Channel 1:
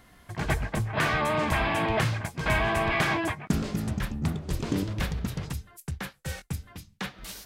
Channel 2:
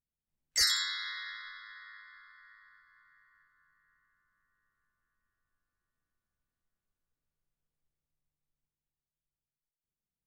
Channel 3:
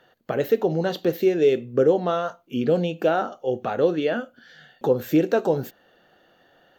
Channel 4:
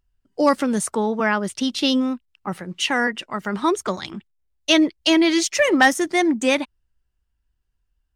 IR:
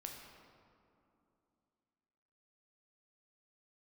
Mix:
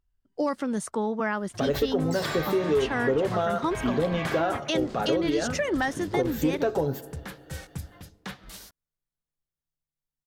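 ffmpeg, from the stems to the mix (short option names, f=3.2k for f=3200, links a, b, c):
-filter_complex "[0:a]adelay=1250,volume=-3.5dB,asplit=2[a][b];[b]volume=-17dB[c];[1:a]asoftclip=type=tanh:threshold=-31.5dB,adelay=1550,volume=-4dB[d];[2:a]aecho=1:1:7.2:0.48,asoftclip=type=tanh:threshold=-9dB,adelay=1300,volume=-2dB,asplit=2[e][f];[f]volume=-12dB[g];[3:a]highshelf=f=5.5k:g=-7.5,alimiter=limit=-10.5dB:level=0:latency=1:release=406,volume=-5dB,asplit=2[h][i];[i]apad=whole_len=384059[j];[a][j]sidechaincompress=threshold=-26dB:ratio=8:attack=5.4:release=1190[k];[4:a]atrim=start_sample=2205[l];[c][g]amix=inputs=2:normalize=0[m];[m][l]afir=irnorm=-1:irlink=0[n];[k][d][e][h][n]amix=inputs=5:normalize=0,equalizer=f=2.5k:w=2.8:g=-3.5,acompressor=threshold=-22dB:ratio=3"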